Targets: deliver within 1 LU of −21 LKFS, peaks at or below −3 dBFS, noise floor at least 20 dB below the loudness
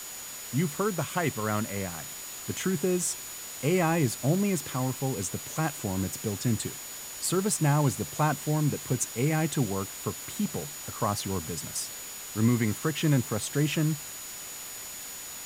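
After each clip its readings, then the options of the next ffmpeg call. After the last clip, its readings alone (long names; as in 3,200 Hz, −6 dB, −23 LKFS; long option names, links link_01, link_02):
interfering tone 6,900 Hz; level of the tone −42 dBFS; background noise floor −41 dBFS; target noise floor −50 dBFS; integrated loudness −29.5 LKFS; sample peak −13.0 dBFS; target loudness −21.0 LKFS
→ -af "bandreject=frequency=6900:width=30"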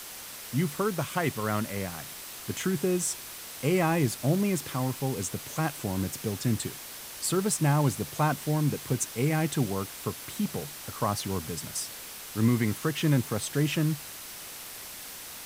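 interfering tone none found; background noise floor −42 dBFS; target noise floor −50 dBFS
→ -af "afftdn=noise_reduction=8:noise_floor=-42"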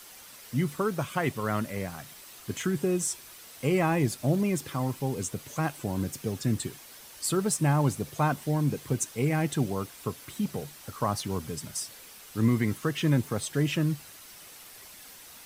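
background noise floor −49 dBFS; target noise floor −50 dBFS
→ -af "afftdn=noise_reduction=6:noise_floor=-49"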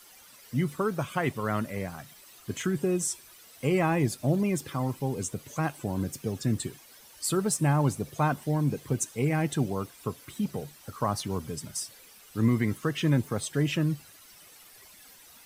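background noise floor −53 dBFS; integrated loudness −29.5 LKFS; sample peak −13.5 dBFS; target loudness −21.0 LKFS
→ -af "volume=8.5dB"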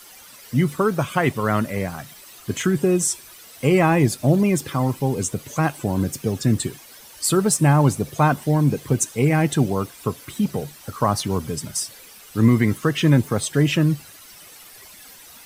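integrated loudness −21.0 LKFS; sample peak −5.0 dBFS; background noise floor −45 dBFS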